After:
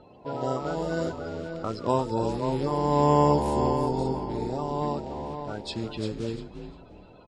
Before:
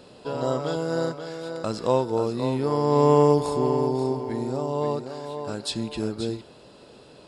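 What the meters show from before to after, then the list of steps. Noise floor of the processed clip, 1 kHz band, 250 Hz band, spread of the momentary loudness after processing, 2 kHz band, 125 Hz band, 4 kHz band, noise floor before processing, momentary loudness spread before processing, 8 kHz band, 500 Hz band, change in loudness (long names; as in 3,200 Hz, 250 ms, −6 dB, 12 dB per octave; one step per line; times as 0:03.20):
−51 dBFS, +1.0 dB, −2.0 dB, 13 LU, −1.5 dB, −1.0 dB, −4.5 dB, −50 dBFS, 14 LU, −5.5 dB, −4.5 dB, −2.5 dB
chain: spectral magnitudes quantised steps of 30 dB
echo with shifted repeats 350 ms, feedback 31%, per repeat −76 Hz, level −9 dB
low-pass that shuts in the quiet parts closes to 2,400 Hz, open at −17.5 dBFS
level −2.5 dB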